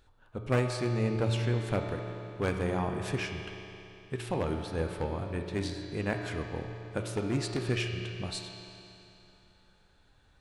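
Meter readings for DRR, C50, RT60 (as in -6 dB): 2.5 dB, 4.0 dB, 3.0 s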